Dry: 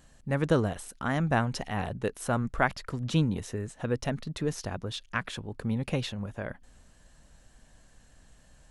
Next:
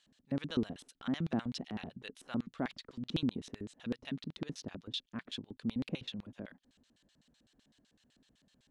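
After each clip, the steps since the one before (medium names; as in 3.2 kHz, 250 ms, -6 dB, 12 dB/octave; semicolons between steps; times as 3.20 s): LFO band-pass square 7.9 Hz 260–3600 Hz; trim +1 dB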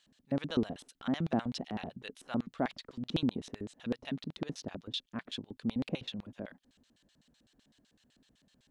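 dynamic bell 690 Hz, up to +6 dB, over -54 dBFS, Q 1.2; trim +1.5 dB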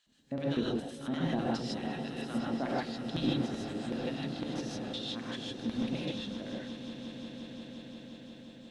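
echo with a slow build-up 176 ms, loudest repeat 5, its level -15 dB; gated-style reverb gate 180 ms rising, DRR -5 dB; trim -4.5 dB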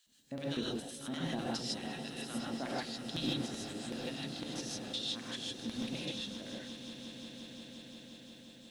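pre-emphasis filter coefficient 0.8; trim +8 dB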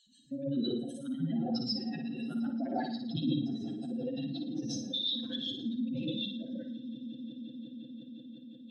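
spectral contrast enhancement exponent 2.8; on a send: flutter echo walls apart 9.7 m, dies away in 0.5 s; on the sum: trim +4.5 dB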